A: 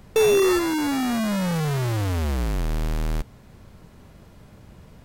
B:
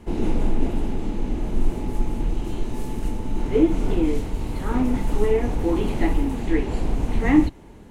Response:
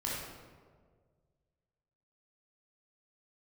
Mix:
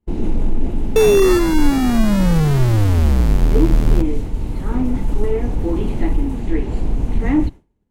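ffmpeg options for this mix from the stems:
-filter_complex "[0:a]adelay=800,volume=1.33[s0];[1:a]asoftclip=type=tanh:threshold=0.316,volume=0.75[s1];[s0][s1]amix=inputs=2:normalize=0,agate=range=0.0224:threshold=0.0355:ratio=3:detection=peak,lowshelf=f=330:g=8"

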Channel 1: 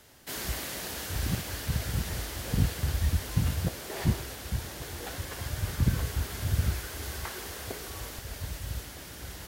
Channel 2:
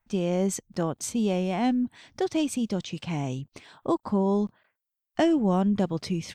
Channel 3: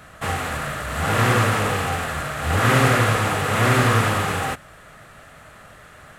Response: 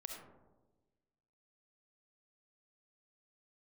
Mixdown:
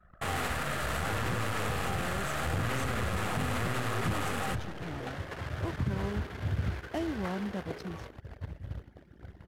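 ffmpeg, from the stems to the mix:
-filter_complex "[0:a]highpass=83,acrossover=split=3200[s0][s1];[s1]acompressor=threshold=0.00316:ratio=4:attack=1:release=60[s2];[s0][s2]amix=inputs=2:normalize=0,volume=1,asplit=2[s3][s4];[s4]volume=0.119[s5];[1:a]adelay=1750,volume=0.251[s6];[2:a]acompressor=threshold=0.0794:ratio=6,aeval=exprs='(tanh(10*val(0)+0.65)-tanh(0.65))/10':c=same,volume=0.944,asplit=2[s7][s8];[s8]volume=0.2[s9];[3:a]atrim=start_sample=2205[s10];[s5][s9]amix=inputs=2:normalize=0[s11];[s11][s10]afir=irnorm=-1:irlink=0[s12];[s3][s6][s7][s12]amix=inputs=4:normalize=0,anlmdn=0.398,alimiter=limit=0.0794:level=0:latency=1:release=61"

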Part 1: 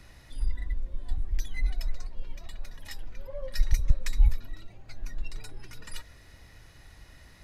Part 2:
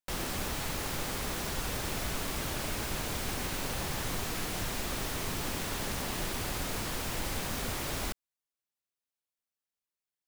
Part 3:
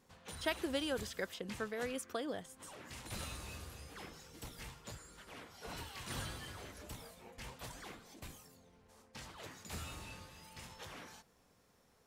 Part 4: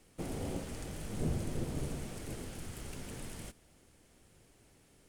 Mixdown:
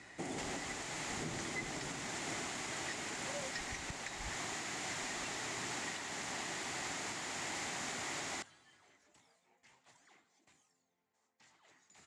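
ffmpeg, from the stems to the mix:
-filter_complex "[0:a]highshelf=f=5700:g=-11.5,volume=1.06[s0];[1:a]adelay=300,volume=0.631[s1];[2:a]adelay=2250,volume=0.141[s2];[3:a]volume=1.26[s3];[s0][s1][s2][s3]amix=inputs=4:normalize=0,highpass=200,equalizer=f=210:t=q:w=4:g=-4,equalizer=f=500:t=q:w=4:g=-7,equalizer=f=780:t=q:w=4:g=4,equalizer=f=2000:t=q:w=4:g=7,equalizer=f=7100:t=q:w=4:g=8,lowpass=f=8200:w=0.5412,lowpass=f=8200:w=1.3066,alimiter=level_in=2.11:limit=0.0631:level=0:latency=1:release=467,volume=0.473"

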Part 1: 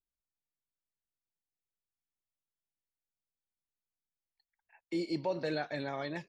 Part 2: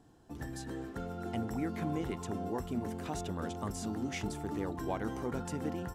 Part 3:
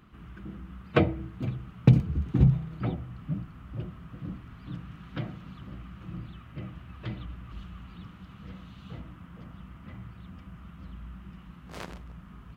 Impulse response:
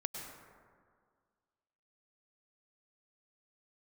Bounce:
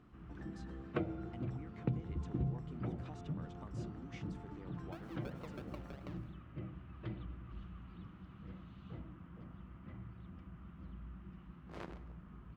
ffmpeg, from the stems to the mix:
-filter_complex "[0:a]acrusher=samples=36:mix=1:aa=0.000001:lfo=1:lforange=21.6:lforate=3.1,aeval=exprs='val(0)*pow(10,-30*if(lt(mod(6.1*n/s,1),2*abs(6.1)/1000),1-mod(6.1*n/s,1)/(2*abs(6.1)/1000),(mod(6.1*n/s,1)-2*abs(6.1)/1000)/(1-2*abs(6.1)/1000))/20)':c=same,volume=0.841,asplit=2[s0][s1];[s1]volume=0.141[s2];[1:a]volume=0.422[s3];[2:a]lowpass=f=1700:p=1,equalizer=f=340:w=5.7:g=6.5,acompressor=threshold=0.0282:ratio=2.5,volume=0.398,asplit=2[s4][s5];[s5]volume=0.224[s6];[s0][s3]amix=inputs=2:normalize=0,lowpass=4300,acompressor=threshold=0.00398:ratio=6,volume=1[s7];[3:a]atrim=start_sample=2205[s8];[s2][s6]amix=inputs=2:normalize=0[s9];[s9][s8]afir=irnorm=-1:irlink=0[s10];[s4][s7][s10]amix=inputs=3:normalize=0"

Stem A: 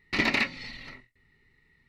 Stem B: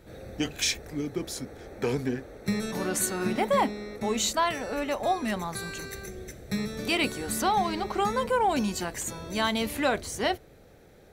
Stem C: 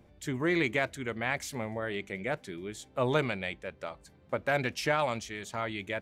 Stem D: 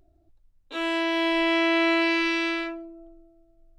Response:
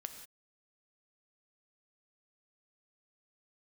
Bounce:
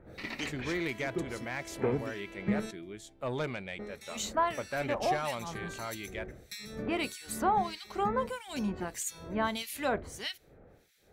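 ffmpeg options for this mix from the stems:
-filter_complex "[0:a]adelay=50,volume=0.188[s0];[1:a]acrossover=split=2000[s1][s2];[s1]aeval=exprs='val(0)*(1-1/2+1/2*cos(2*PI*1.6*n/s))':c=same[s3];[s2]aeval=exprs='val(0)*(1-1/2-1/2*cos(2*PI*1.6*n/s))':c=same[s4];[s3][s4]amix=inputs=2:normalize=0,volume=0.841,asplit=3[s5][s6][s7];[s5]atrim=end=2.71,asetpts=PTS-STARTPTS,afade=t=out:st=2.706:d=0.004:c=hsin[s8];[s6]atrim=start=2.71:end=3.79,asetpts=PTS-STARTPTS,volume=0[s9];[s7]atrim=start=3.79,asetpts=PTS-STARTPTS,afade=t=in:d=0.004:c=hsin[s10];[s8][s9][s10]concat=n=3:v=0:a=1[s11];[2:a]aeval=exprs='0.224*sin(PI/2*1.58*val(0)/0.224)':c=same,adelay=250,volume=0.224[s12];[3:a]lowpass=f=2200:p=1,acompressor=threshold=0.02:ratio=6,volume=0.2[s13];[s0][s11][s12][s13]amix=inputs=4:normalize=0"

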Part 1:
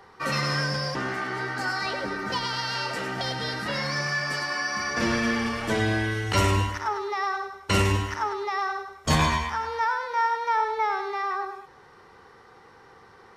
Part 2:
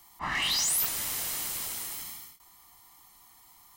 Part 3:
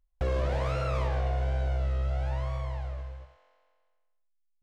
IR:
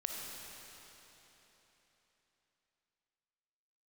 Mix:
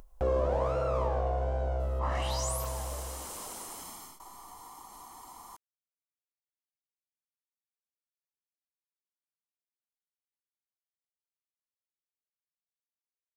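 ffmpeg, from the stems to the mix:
-filter_complex "[1:a]lowpass=9500,adelay=1800,volume=0.501[s0];[2:a]acontrast=38,volume=0.376[s1];[s0][s1]amix=inputs=2:normalize=0,equalizer=f=125:t=o:w=1:g=-5,equalizer=f=250:t=o:w=1:g=4,equalizer=f=500:t=o:w=1:g=6,equalizer=f=1000:t=o:w=1:g=7,equalizer=f=2000:t=o:w=1:g=-8,equalizer=f=4000:t=o:w=1:g=-6,acompressor=mode=upward:threshold=0.0178:ratio=2.5"

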